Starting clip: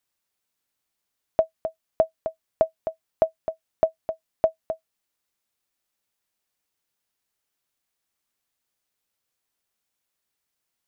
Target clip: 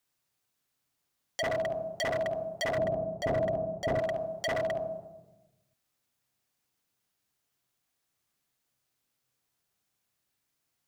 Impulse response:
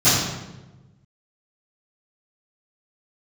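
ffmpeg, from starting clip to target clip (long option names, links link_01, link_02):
-filter_complex "[0:a]asplit=2[link_01][link_02];[1:a]atrim=start_sample=2205,highshelf=frequency=2300:gain=-6,adelay=40[link_03];[link_02][link_03]afir=irnorm=-1:irlink=0,volume=-25dB[link_04];[link_01][link_04]amix=inputs=2:normalize=0,aeval=exprs='0.0562*(abs(mod(val(0)/0.0562+3,4)-2)-1)':channel_layout=same,asettb=1/sr,asplit=3[link_05][link_06][link_07];[link_05]atrim=end=2.774[link_08];[link_06]atrim=start=2.77:end=3.99,asetpts=PTS-STARTPTS,afade=type=in:duration=0.004:curve=qsin,afade=type=out:start_time=1.216:duration=0.004:curve=qsin,tiltshelf=frequency=820:gain=8[link_09];[link_07]atrim=start=3.986[link_10];[link_08][link_09]acrossfade=duration=0.004:curve1=hsin:curve2=qsin[link_11];[link_11][link_10]acrossfade=duration=0.004:curve1=qsin:curve2=hsin"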